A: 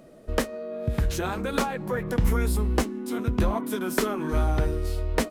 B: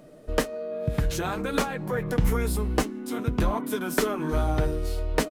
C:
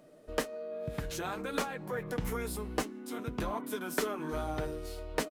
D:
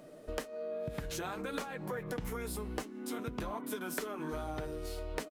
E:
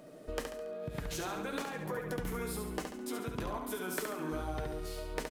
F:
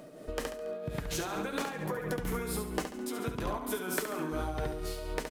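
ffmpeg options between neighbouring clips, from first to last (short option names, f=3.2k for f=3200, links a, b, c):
-af "aecho=1:1:6.7:0.38"
-af "lowshelf=f=160:g=-10,volume=-6.5dB"
-af "acompressor=threshold=-41dB:ratio=5,volume=5dB"
-af "aecho=1:1:70|140|210|280|350|420:0.531|0.255|0.122|0.0587|0.0282|0.0135"
-af "tremolo=f=4.3:d=0.41,volume=5dB"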